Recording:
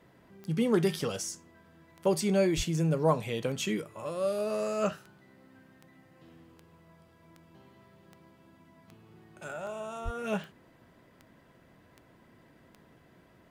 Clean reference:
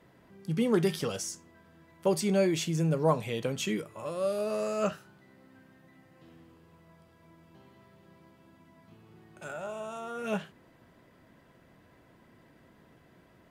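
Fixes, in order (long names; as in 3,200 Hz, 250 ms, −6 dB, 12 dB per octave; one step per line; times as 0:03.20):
click removal
0:02.56–0:02.68: high-pass filter 140 Hz 24 dB per octave
0:10.04–0:10.16: high-pass filter 140 Hz 24 dB per octave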